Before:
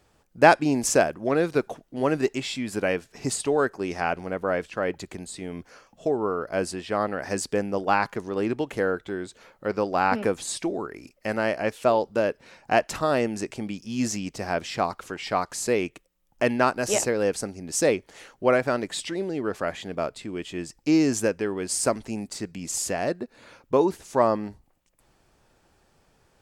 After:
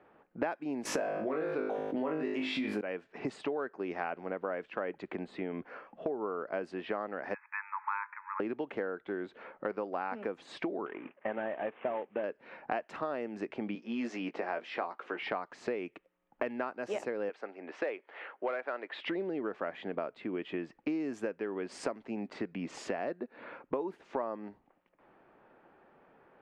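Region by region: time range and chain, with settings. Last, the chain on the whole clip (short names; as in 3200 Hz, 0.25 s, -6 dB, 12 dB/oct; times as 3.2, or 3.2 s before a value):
0.85–2.81 bell 7800 Hz -6 dB 0.58 oct + flutter echo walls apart 3.3 m, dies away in 0.38 s + fast leveller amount 70%
7.34–8.4 G.711 law mismatch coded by mu + brick-wall FIR band-pass 840–2600 Hz
10.86–12.24 CVSD 16 kbps + HPF 160 Hz 6 dB/oct + notch 1400 Hz, Q 16
13.75–15.19 HPF 300 Hz + doubler 17 ms -8 dB
17.29–19.06 BPF 410–2900 Hz + tilt +2 dB/oct + hard clip -16.5 dBFS
whole clip: low-pass opened by the level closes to 2200 Hz, open at -18.5 dBFS; three-band isolator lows -23 dB, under 190 Hz, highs -23 dB, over 2900 Hz; compressor 8:1, threshold -37 dBFS; gain +4.5 dB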